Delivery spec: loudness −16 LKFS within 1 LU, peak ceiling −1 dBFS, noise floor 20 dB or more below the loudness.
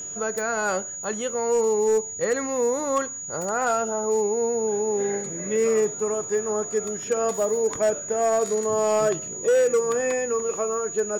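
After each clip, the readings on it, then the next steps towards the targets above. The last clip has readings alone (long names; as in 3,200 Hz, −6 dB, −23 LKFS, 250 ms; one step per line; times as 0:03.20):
share of clipped samples 1.0%; peaks flattened at −15.5 dBFS; interfering tone 6,800 Hz; level of the tone −32 dBFS; integrated loudness −24.0 LKFS; sample peak −15.5 dBFS; target loudness −16.0 LKFS
→ clipped peaks rebuilt −15.5 dBFS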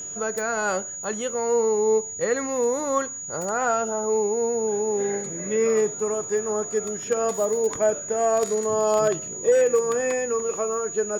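share of clipped samples 0.0%; interfering tone 6,800 Hz; level of the tone −32 dBFS
→ notch filter 6,800 Hz, Q 30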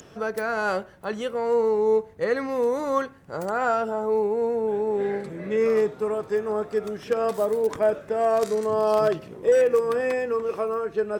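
interfering tone none found; integrated loudness −24.5 LKFS; sample peak −8.0 dBFS; target loudness −16.0 LKFS
→ level +8.5 dB
brickwall limiter −1 dBFS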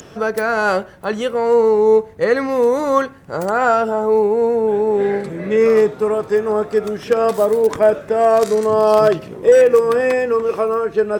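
integrated loudness −16.0 LKFS; sample peak −1.0 dBFS; background noise floor −39 dBFS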